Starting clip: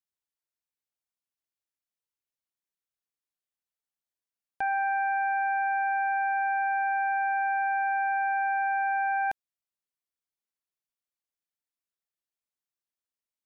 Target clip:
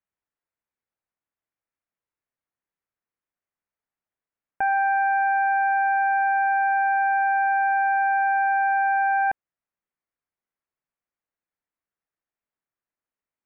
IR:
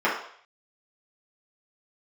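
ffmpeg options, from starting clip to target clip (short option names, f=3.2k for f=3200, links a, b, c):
-af "lowpass=f=2.2k:w=0.5412,lowpass=f=2.2k:w=1.3066,volume=6dB"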